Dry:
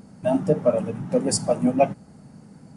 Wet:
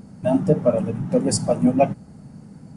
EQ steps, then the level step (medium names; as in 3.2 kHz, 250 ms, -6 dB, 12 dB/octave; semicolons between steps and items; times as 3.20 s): bass shelf 230 Hz +7.5 dB; 0.0 dB